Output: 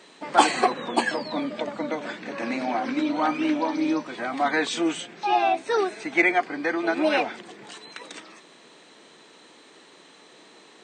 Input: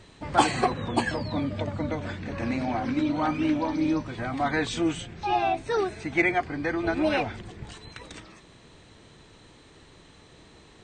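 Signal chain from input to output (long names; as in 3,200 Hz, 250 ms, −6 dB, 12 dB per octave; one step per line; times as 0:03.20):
Bessel high-pass filter 320 Hz, order 6
level +4 dB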